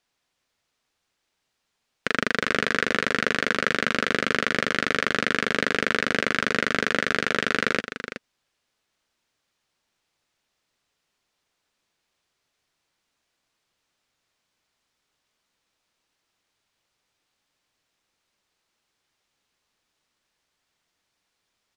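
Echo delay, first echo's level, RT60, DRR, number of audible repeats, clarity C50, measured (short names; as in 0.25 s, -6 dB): 0.374 s, -10.0 dB, none, none, 1, none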